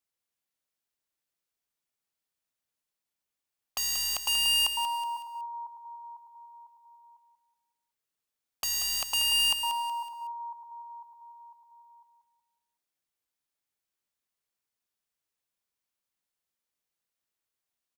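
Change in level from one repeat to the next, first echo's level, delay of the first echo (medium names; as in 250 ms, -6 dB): -8.0 dB, -9.0 dB, 186 ms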